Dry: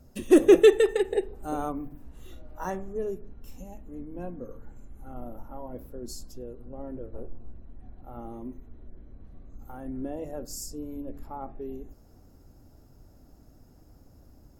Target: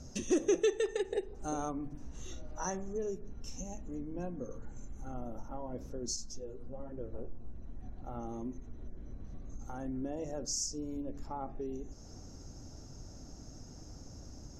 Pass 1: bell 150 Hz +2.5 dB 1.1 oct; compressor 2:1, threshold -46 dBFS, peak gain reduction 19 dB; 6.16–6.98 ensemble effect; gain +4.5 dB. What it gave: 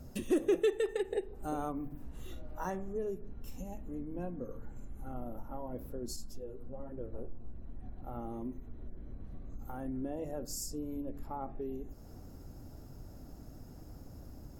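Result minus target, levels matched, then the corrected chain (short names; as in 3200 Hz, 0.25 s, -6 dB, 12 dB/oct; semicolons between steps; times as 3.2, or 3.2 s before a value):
8000 Hz band -7.0 dB
synth low-pass 6100 Hz, resonance Q 7.9; bell 150 Hz +2.5 dB 1.1 oct; compressor 2:1, threshold -46 dBFS, peak gain reduction 19 dB; 6.16–6.98 ensemble effect; gain +4.5 dB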